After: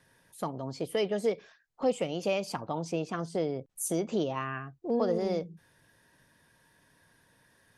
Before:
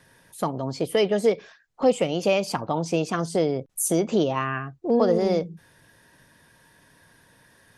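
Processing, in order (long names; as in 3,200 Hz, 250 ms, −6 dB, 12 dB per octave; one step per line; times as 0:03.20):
0:02.91–0:03.80: high-shelf EQ 5,400 Hz → 10,000 Hz −10.5 dB
level −8 dB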